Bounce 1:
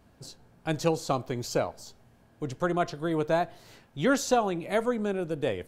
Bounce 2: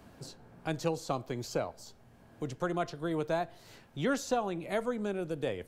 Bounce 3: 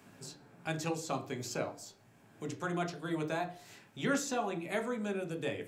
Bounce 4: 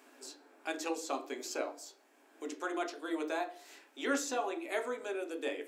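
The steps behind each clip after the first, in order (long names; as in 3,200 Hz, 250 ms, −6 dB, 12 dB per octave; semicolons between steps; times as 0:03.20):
multiband upward and downward compressor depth 40%; level −5.5 dB
convolution reverb RT60 0.40 s, pre-delay 3 ms, DRR 5 dB
linear-phase brick-wall high-pass 250 Hz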